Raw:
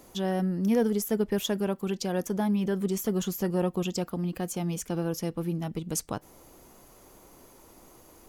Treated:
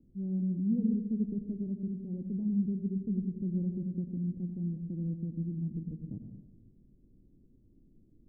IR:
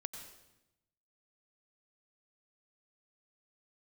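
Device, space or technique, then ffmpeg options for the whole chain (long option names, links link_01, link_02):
next room: -filter_complex "[0:a]lowpass=frequency=260:width=0.5412,lowpass=frequency=260:width=1.3066[link_01];[1:a]atrim=start_sample=2205[link_02];[link_01][link_02]afir=irnorm=-1:irlink=0"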